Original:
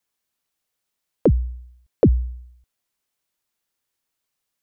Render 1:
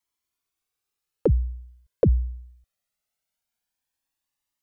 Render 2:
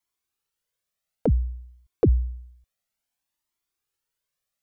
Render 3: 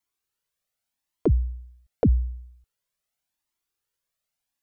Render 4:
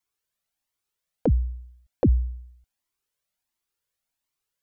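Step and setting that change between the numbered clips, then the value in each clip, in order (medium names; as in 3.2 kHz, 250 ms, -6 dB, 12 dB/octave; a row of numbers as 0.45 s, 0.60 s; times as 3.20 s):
Shepard-style flanger, rate: 0.21 Hz, 0.57 Hz, 0.85 Hz, 1.4 Hz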